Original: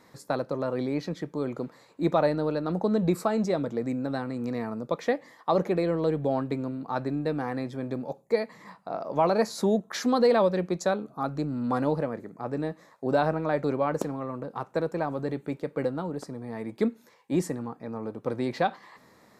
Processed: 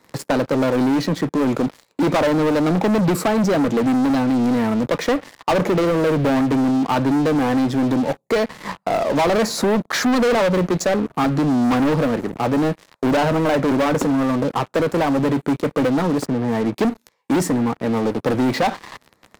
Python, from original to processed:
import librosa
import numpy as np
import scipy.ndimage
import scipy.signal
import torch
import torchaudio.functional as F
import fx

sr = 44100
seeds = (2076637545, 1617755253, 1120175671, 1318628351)

y = fx.highpass(x, sr, hz=84.0, slope=24, at=(2.22, 4.1))
y = fx.lowpass(y, sr, hz=2000.0, slope=12, at=(16.25, 16.73), fade=0.02)
y = fx.dynamic_eq(y, sr, hz=270.0, q=5.6, threshold_db=-44.0, ratio=4.0, max_db=6)
y = fx.leveller(y, sr, passes=5)
y = fx.band_squash(y, sr, depth_pct=40)
y = y * 10.0 ** (-2.5 / 20.0)